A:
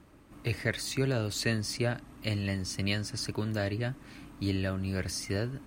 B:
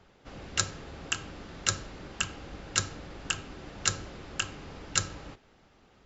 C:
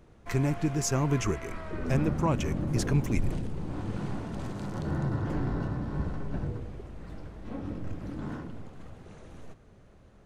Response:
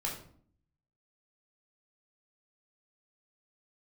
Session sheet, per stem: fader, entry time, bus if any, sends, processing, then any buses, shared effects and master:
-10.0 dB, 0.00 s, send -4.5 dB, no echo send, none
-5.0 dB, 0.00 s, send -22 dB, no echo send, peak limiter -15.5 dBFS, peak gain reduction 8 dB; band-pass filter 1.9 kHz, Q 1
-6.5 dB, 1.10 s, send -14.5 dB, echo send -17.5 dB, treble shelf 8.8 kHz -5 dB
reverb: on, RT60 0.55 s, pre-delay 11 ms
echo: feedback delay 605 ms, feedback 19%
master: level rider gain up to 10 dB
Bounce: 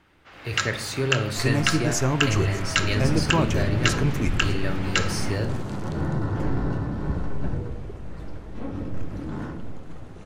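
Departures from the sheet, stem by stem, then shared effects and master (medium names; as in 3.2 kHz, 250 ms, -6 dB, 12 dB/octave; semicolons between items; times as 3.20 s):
stem B -5.0 dB -> +3.5 dB; stem C: missing treble shelf 8.8 kHz -5 dB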